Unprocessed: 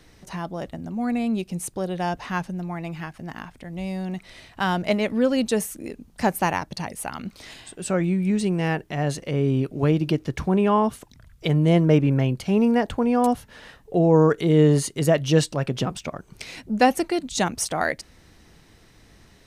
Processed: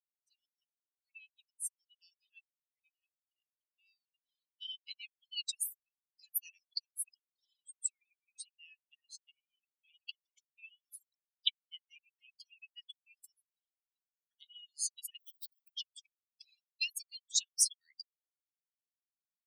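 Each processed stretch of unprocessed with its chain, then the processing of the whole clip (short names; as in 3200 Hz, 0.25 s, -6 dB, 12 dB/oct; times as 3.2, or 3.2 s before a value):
10.87–11.72 negative-ratio compressor -24 dBFS, ratio -0.5 + dispersion lows, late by 44 ms, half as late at 2100 Hz
15.19–15.75 compressor 16:1, threshold -27 dBFS + Schmitt trigger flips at -38 dBFS
whole clip: per-bin expansion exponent 3; reverb removal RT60 1.8 s; steep high-pass 2800 Hz 72 dB/oct; gain +3 dB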